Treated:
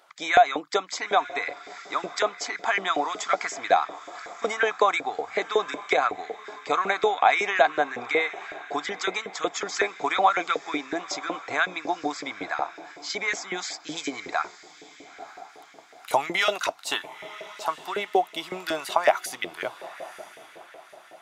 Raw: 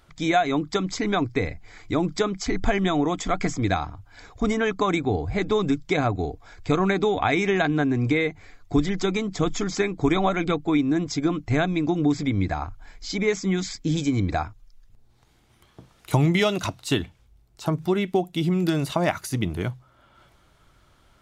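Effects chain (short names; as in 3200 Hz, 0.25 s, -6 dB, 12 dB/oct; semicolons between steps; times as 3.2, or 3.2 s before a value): diffused feedback echo 0.949 s, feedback 42%, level -16 dB; LFO high-pass saw up 5.4 Hz 500–1800 Hz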